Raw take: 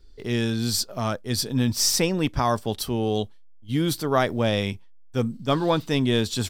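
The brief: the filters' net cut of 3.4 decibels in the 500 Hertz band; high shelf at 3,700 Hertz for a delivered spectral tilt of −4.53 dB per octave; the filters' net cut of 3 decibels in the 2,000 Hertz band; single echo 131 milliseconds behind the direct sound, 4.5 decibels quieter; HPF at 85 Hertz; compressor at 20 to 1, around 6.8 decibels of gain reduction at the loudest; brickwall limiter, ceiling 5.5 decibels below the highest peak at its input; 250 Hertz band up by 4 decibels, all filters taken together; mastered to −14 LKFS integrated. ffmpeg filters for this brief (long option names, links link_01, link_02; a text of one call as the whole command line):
ffmpeg -i in.wav -af "highpass=85,equalizer=frequency=250:width_type=o:gain=6.5,equalizer=frequency=500:width_type=o:gain=-6.5,equalizer=frequency=2000:width_type=o:gain=-5.5,highshelf=frequency=3700:gain=6,acompressor=threshold=-21dB:ratio=20,alimiter=limit=-17dB:level=0:latency=1,aecho=1:1:131:0.596,volume=12.5dB" out.wav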